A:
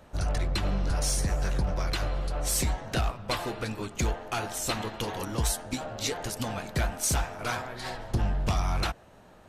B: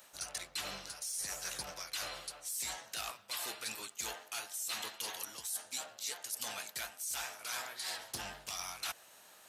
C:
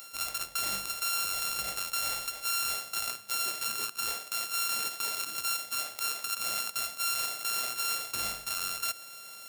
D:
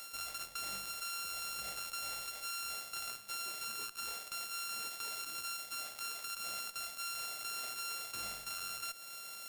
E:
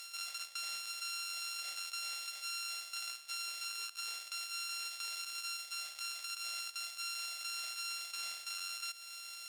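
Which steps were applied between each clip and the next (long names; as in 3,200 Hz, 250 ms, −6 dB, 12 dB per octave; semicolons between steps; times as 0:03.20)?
first difference; brickwall limiter −26.5 dBFS, peak gain reduction 9.5 dB; reversed playback; downward compressor 12 to 1, threshold −48 dBFS, peak gain reduction 16 dB; reversed playback; level +11 dB
samples sorted by size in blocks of 32 samples; high-shelf EQ 2,600 Hz +12 dB; brickwall limiter −21 dBFS, peak gain reduction 9.5 dB; level +5.5 dB
downward compressor 2 to 1, threshold −36 dBFS, peak gain reduction 7 dB; gain into a clipping stage and back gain 28 dB; tube saturation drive 32 dB, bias 0.65; level +1 dB
resonant band-pass 4,200 Hz, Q 0.7; level +3 dB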